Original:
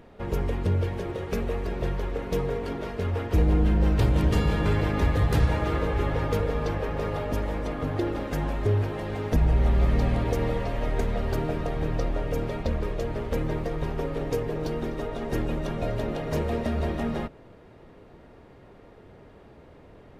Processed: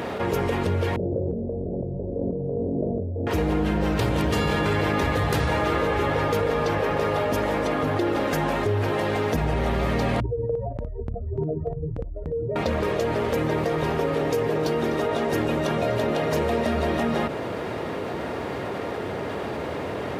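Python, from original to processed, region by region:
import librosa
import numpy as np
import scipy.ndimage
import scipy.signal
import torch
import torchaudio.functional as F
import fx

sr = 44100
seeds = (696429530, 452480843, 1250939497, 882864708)

y = fx.chain(x, sr, fx.steep_lowpass(hz=590.0, slope=48),
    fx.peak_eq(hz=420.0, db=-8.5, octaves=0.85),
    fx.over_compress(threshold_db=-37.0, ratio=-1.0), at=(0.96, 3.27))
y = fx.chain(y, sr, fx.spec_expand(power=3.4),
    fx.chopper(hz=3.4, depth_pct=60, duty_pct=20), at=(10.2, 12.56))
y = scipy.signal.sosfilt(scipy.signal.butter(4, 68.0, 'highpass', fs=sr, output='sos'), y)
y = fx.low_shelf(y, sr, hz=240.0, db=-9.5)
y = fx.env_flatten(y, sr, amount_pct=70)
y = y * 10.0 ** (4.0 / 20.0)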